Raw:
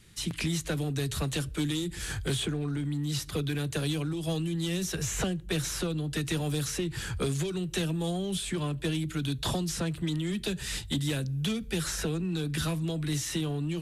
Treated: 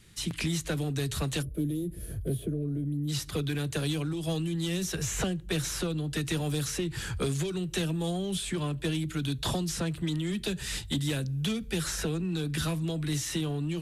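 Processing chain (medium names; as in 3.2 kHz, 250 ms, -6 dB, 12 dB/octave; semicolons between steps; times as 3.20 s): time-frequency box 1.42–3.08 s, 700–9500 Hz -20 dB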